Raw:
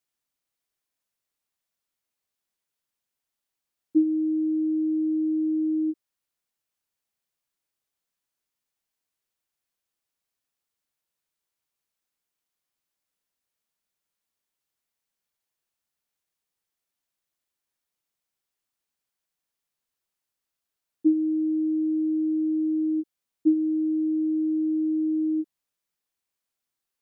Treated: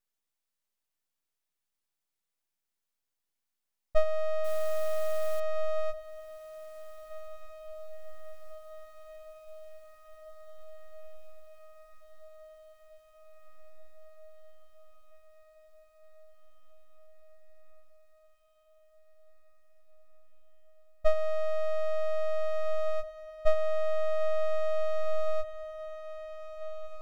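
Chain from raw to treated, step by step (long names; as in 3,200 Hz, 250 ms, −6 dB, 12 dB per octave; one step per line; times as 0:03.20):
0:04.44–0:05.40: noise that follows the level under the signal 26 dB
full-wave rectification
feedback delay with all-pass diffusion 1,813 ms, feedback 73%, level −14 dB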